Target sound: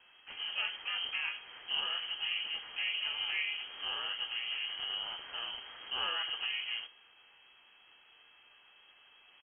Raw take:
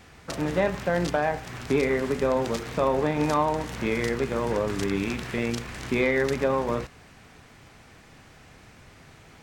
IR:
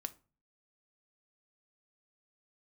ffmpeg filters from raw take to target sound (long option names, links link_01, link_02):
-filter_complex "[0:a]aemphasis=mode=production:type=50fm,asplit=3[link_01][link_02][link_03];[link_02]asetrate=35002,aresample=44100,atempo=1.25992,volume=-4dB[link_04];[link_03]asetrate=58866,aresample=44100,atempo=0.749154,volume=-4dB[link_05];[link_01][link_04][link_05]amix=inputs=3:normalize=0,aeval=exprs='val(0)+0.00251*sin(2*PI*660*n/s)':channel_layout=same[link_06];[1:a]atrim=start_sample=2205,asetrate=66150,aresample=44100[link_07];[link_06][link_07]afir=irnorm=-1:irlink=0,lowpass=frequency=2800:width_type=q:width=0.5098,lowpass=frequency=2800:width_type=q:width=0.6013,lowpass=frequency=2800:width_type=q:width=0.9,lowpass=frequency=2800:width_type=q:width=2.563,afreqshift=-3300,volume=-8.5dB"